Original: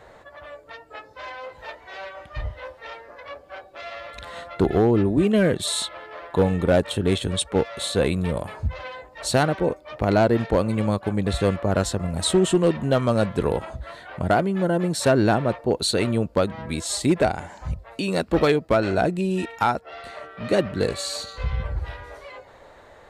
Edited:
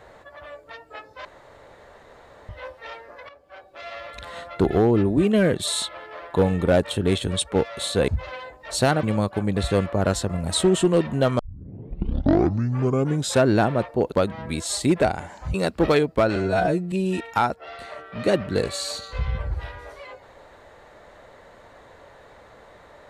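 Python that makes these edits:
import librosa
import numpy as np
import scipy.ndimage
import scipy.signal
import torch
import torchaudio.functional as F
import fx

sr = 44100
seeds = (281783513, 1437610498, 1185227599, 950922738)

y = fx.edit(x, sr, fx.room_tone_fill(start_s=1.25, length_s=1.24),
    fx.fade_in_from(start_s=3.29, length_s=0.67, floor_db=-13.5),
    fx.cut(start_s=8.08, length_s=0.52),
    fx.cut(start_s=9.55, length_s=1.18),
    fx.tape_start(start_s=13.09, length_s=2.05),
    fx.cut(start_s=15.82, length_s=0.5),
    fx.cut(start_s=17.74, length_s=0.33),
    fx.stretch_span(start_s=18.89, length_s=0.28, factor=2.0), tone=tone)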